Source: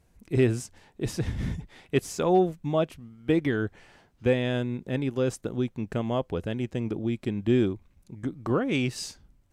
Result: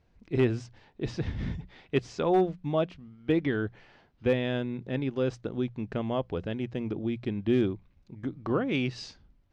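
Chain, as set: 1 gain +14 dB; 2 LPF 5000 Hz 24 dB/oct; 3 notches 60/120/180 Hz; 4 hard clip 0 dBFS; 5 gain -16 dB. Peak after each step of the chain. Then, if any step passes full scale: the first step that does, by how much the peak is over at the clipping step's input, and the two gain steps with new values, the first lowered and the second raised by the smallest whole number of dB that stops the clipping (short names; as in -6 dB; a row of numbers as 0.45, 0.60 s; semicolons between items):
+1.5, +1.5, +3.0, 0.0, -16.0 dBFS; step 1, 3.0 dB; step 1 +11 dB, step 5 -13 dB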